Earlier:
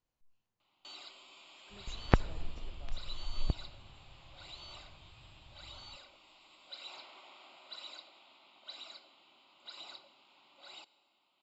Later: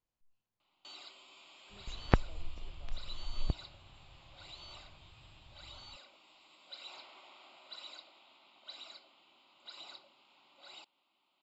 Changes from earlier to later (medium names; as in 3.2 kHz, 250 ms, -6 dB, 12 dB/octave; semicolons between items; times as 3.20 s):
speech -3.0 dB; reverb: off